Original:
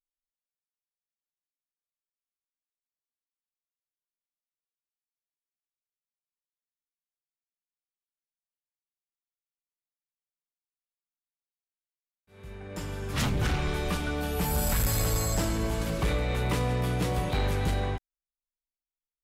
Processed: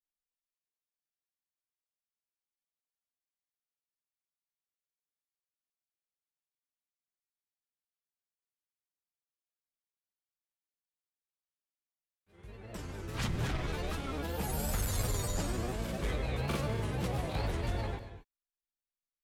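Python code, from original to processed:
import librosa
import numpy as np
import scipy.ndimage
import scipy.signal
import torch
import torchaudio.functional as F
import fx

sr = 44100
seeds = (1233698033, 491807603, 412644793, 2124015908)

y = fx.granulator(x, sr, seeds[0], grain_ms=100.0, per_s=20.0, spray_ms=23.0, spread_st=3)
y = fx.rev_gated(y, sr, seeds[1], gate_ms=260, shape='rising', drr_db=10.5)
y = y * 10.0 ** (-5.5 / 20.0)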